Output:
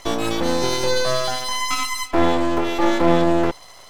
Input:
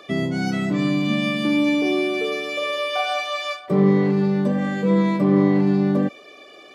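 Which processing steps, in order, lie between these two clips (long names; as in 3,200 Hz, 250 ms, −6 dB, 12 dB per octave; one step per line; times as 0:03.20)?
half-wave rectification
wrong playback speed 45 rpm record played at 78 rpm
level +4.5 dB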